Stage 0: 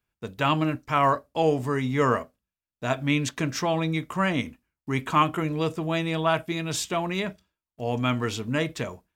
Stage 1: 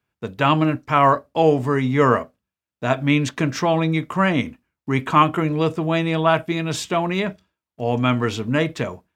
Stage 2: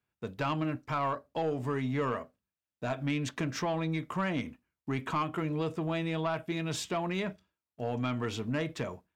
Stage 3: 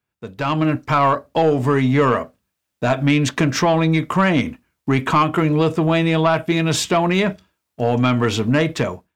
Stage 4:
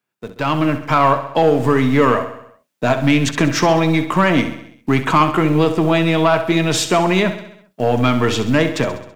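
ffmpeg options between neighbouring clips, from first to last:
-af "highpass=76,highshelf=f=4.7k:g=-9.5,volume=6.5dB"
-af "acompressor=threshold=-20dB:ratio=2.5,asoftclip=type=tanh:threshold=-14.5dB,volume=-8dB"
-af "dynaudnorm=f=340:g=3:m=11.5dB,volume=4dB"
-filter_complex "[0:a]acrossover=split=140[a][b];[a]acrusher=bits=4:dc=4:mix=0:aa=0.000001[c];[c][b]amix=inputs=2:normalize=0,aecho=1:1:66|132|198|264|330|396:0.266|0.152|0.0864|0.0493|0.0281|0.016,volume=2dB"

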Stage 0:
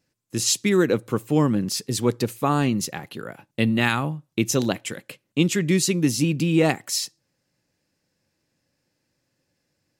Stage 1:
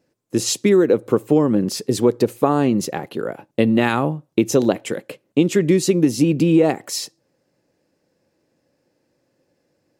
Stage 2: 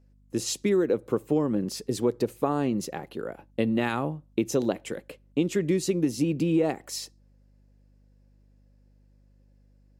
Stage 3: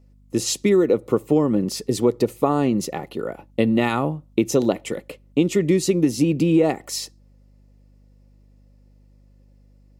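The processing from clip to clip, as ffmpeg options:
-af "equalizer=f=460:w=0.53:g=13.5,acompressor=threshold=-10dB:ratio=6,volume=-1dB"
-af "aeval=exprs='val(0)+0.00355*(sin(2*PI*50*n/s)+sin(2*PI*2*50*n/s)/2+sin(2*PI*3*50*n/s)/3+sin(2*PI*4*50*n/s)/4+sin(2*PI*5*50*n/s)/5)':c=same,volume=-9dB"
-af "asuperstop=centerf=1600:order=12:qfactor=7.3,volume=6.5dB"

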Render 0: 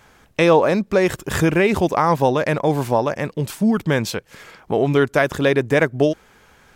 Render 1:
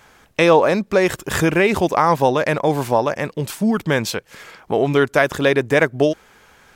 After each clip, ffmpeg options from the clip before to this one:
-af "lowshelf=f=330:g=-5,volume=2.5dB"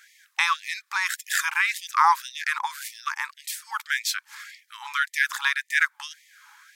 -af "equalizer=f=2.8k:t=o:w=0.41:g=-5.5,afftfilt=real='re*gte(b*sr/1024,790*pow(1800/790,0.5+0.5*sin(2*PI*1.8*pts/sr)))':imag='im*gte(b*sr/1024,790*pow(1800/790,0.5+0.5*sin(2*PI*1.8*pts/sr)))':win_size=1024:overlap=0.75"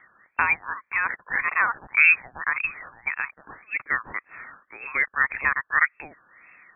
-af "lowpass=f=3k:t=q:w=0.5098,lowpass=f=3k:t=q:w=0.6013,lowpass=f=3k:t=q:w=0.9,lowpass=f=3k:t=q:w=2.563,afreqshift=-3500,volume=1.5dB"

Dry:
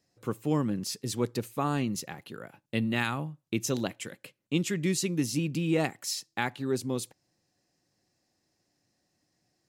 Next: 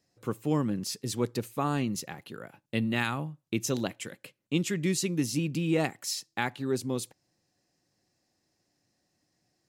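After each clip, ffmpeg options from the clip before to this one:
-af anull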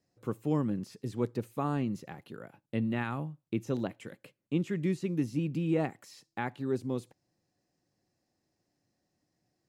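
-filter_complex "[0:a]acrossover=split=2600[a][b];[b]acompressor=threshold=-45dB:ratio=4:attack=1:release=60[c];[a][c]amix=inputs=2:normalize=0,tiltshelf=f=1.4k:g=3.5,volume=-5dB"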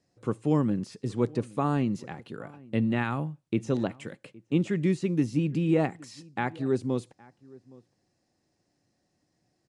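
-filter_complex "[0:a]asplit=2[a][b];[b]adelay=816.3,volume=-23dB,highshelf=f=4k:g=-18.4[c];[a][c]amix=inputs=2:normalize=0,aresample=22050,aresample=44100,volume=5dB"

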